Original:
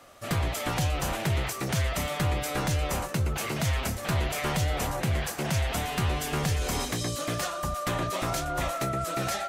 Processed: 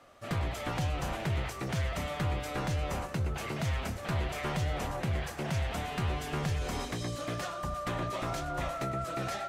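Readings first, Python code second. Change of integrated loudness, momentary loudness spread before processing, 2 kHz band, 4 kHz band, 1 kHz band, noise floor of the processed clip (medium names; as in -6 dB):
-5.0 dB, 2 LU, -5.5 dB, -7.5 dB, -4.5 dB, -42 dBFS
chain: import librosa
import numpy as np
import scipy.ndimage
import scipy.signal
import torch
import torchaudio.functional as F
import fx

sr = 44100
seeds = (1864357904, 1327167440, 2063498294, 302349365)

y = fx.lowpass(x, sr, hz=3500.0, slope=6)
y = fx.echo_feedback(y, sr, ms=102, feedback_pct=58, wet_db=-17.0)
y = y * 10.0 ** (-4.5 / 20.0)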